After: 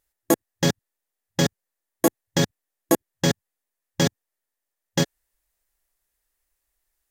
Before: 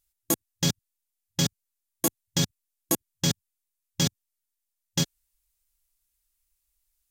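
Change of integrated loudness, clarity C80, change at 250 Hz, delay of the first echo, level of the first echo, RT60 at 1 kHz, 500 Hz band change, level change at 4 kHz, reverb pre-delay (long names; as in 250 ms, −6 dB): +3.5 dB, no reverb audible, +6.5 dB, no echo audible, no echo audible, no reverb audible, +11.0 dB, +0.5 dB, no reverb audible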